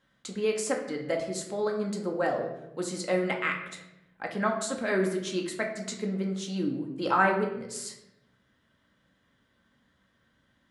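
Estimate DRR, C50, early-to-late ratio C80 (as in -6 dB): 1.0 dB, 7.0 dB, 10.0 dB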